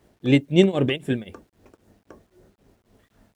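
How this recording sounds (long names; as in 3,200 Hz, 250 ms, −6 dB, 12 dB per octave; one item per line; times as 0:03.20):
tremolo triangle 3.8 Hz, depth 95%
a quantiser's noise floor 12 bits, dither none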